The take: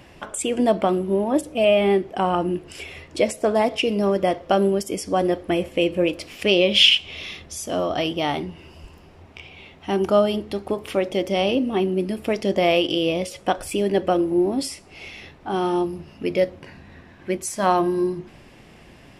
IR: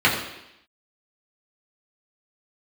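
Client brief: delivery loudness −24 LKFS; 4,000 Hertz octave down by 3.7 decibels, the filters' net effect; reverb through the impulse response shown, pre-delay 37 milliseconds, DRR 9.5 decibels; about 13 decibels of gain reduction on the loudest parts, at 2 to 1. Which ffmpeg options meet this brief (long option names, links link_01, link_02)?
-filter_complex "[0:a]equalizer=frequency=4000:width_type=o:gain=-5.5,acompressor=threshold=-39dB:ratio=2,asplit=2[link_01][link_02];[1:a]atrim=start_sample=2205,adelay=37[link_03];[link_02][link_03]afir=irnorm=-1:irlink=0,volume=-30dB[link_04];[link_01][link_04]amix=inputs=2:normalize=0,volume=10dB"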